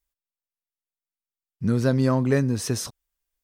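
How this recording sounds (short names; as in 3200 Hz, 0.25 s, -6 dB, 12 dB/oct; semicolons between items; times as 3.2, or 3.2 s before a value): noise floor -94 dBFS; spectral tilt -6.0 dB/oct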